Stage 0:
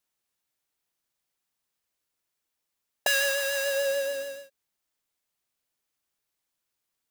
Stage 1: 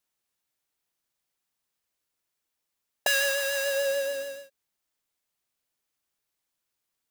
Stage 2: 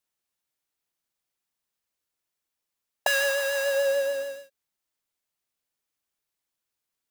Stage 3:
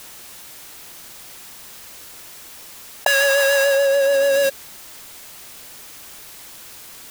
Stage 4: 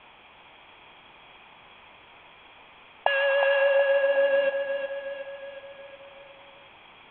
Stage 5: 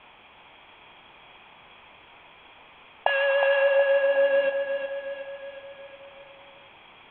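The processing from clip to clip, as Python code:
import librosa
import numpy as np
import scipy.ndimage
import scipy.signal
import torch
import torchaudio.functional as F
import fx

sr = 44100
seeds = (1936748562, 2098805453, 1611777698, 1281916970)

y1 = x
y2 = fx.dynamic_eq(y1, sr, hz=820.0, q=0.72, threshold_db=-43.0, ratio=4.0, max_db=8)
y2 = y2 * librosa.db_to_amplitude(-2.5)
y3 = fx.env_flatten(y2, sr, amount_pct=100)
y3 = y3 * librosa.db_to_amplitude(5.0)
y4 = scipy.signal.sosfilt(scipy.signal.cheby1(6, 9, 3400.0, 'lowpass', fs=sr, output='sos'), y3)
y4 = fx.echo_feedback(y4, sr, ms=365, feedback_pct=53, wet_db=-7)
y5 = fx.doubler(y4, sr, ms=29.0, db=-13)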